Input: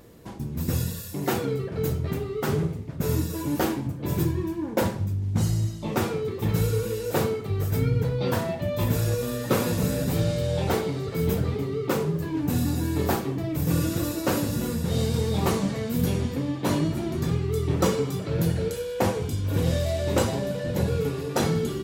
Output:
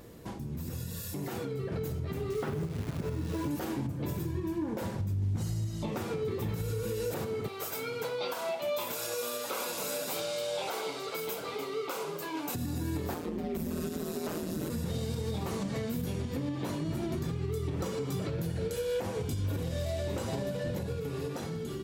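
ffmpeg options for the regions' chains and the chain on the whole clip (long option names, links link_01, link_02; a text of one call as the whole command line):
ffmpeg -i in.wav -filter_complex "[0:a]asettb=1/sr,asplit=3[link_01][link_02][link_03];[link_01]atrim=end=2.304[link_04];[link_02]atrim=start=2.3:end=3.51,asetpts=PTS-STARTPTS,afade=type=in:duration=0.004:curve=qsin,afade=type=out:start_time=1.206:duration=0.004:curve=qsin,lowpass=3100,acrusher=bits=8:dc=4:mix=0:aa=0.000001[link_05];[link_03]atrim=start=3.506[link_06];[link_04][link_05]acrossfade=duration=0.004:curve1=hsin:curve2=qsin[link_07];[link_07][link_06]acrossfade=duration=0.004:curve1=qsin:curve2=hsin,asettb=1/sr,asplit=3[link_08][link_09][link_10];[link_08]atrim=end=7.484[link_11];[link_09]atrim=start=7.48:end=12.55,asetpts=PTS-STARTPTS,afade=type=in:duration=0.004:curve=qsin,afade=type=out:start_time=5.066:duration=0.004:curve=qsin,highpass=690,bandreject=frequency=1800:width=5.5[link_12];[link_10]atrim=start=12.546[link_13];[link_11][link_12]acrossfade=duration=0.004:curve1=hsin:curve2=qsin[link_14];[link_14][link_13]acrossfade=duration=0.004:curve1=qsin:curve2=hsin,asettb=1/sr,asplit=3[link_15][link_16][link_17];[link_15]atrim=end=13.144[link_18];[link_16]atrim=start=13.14:end=14.7,asetpts=PTS-STARTPTS,afade=type=in:duration=0.004:curve=qsin,afade=type=out:start_time=1.556:duration=0.004:curve=qsin,lowshelf=frequency=340:gain=8,aeval=exprs='val(0)*sin(2*PI*82*n/s)':channel_layout=same,highpass=frequency=240:poles=1[link_19];[link_17]atrim=start=14.696[link_20];[link_18][link_19]acrossfade=duration=0.004:curve1=hsin:curve2=qsin[link_21];[link_21][link_20]acrossfade=duration=0.004:curve1=qsin:curve2=hsin,acompressor=threshold=-28dB:ratio=6,alimiter=level_in=5dB:limit=-24dB:level=0:latency=1:release=216,volume=-5dB,dynaudnorm=framelen=600:gausssize=5:maxgain=4dB" out.wav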